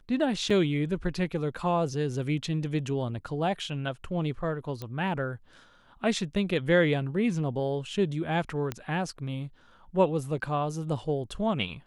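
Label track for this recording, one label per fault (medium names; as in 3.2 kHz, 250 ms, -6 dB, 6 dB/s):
0.500000	0.500000	dropout 4.1 ms
4.820000	4.820000	pop -22 dBFS
8.720000	8.720000	pop -17 dBFS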